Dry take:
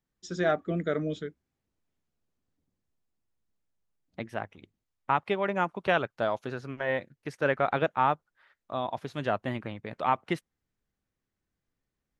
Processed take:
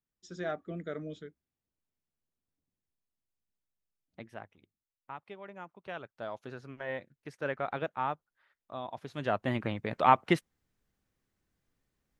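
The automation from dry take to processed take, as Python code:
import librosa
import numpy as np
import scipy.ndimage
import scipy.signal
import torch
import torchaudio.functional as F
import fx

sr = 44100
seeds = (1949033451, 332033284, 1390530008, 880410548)

y = fx.gain(x, sr, db=fx.line((4.27, -9.5), (5.11, -18.0), (5.79, -18.0), (6.49, -8.0), (8.92, -8.0), (9.68, 4.0)))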